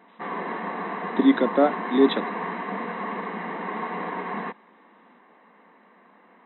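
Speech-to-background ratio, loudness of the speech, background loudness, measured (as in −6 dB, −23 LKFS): 9.0 dB, −22.0 LKFS, −31.0 LKFS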